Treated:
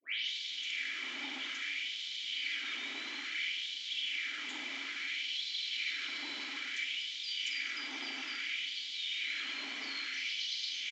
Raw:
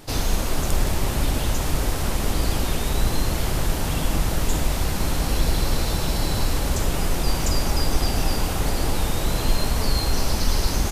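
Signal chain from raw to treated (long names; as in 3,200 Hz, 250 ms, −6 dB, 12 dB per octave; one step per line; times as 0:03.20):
turntable start at the beginning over 0.56 s
formant filter i
comb filter 3 ms, depth 33%
in parallel at −6.5 dB: soft clipping −38 dBFS, distortion −11 dB
on the sum: downsampling to 16,000 Hz
auto-filter high-pass sine 0.59 Hz 930–3,700 Hz
level +3.5 dB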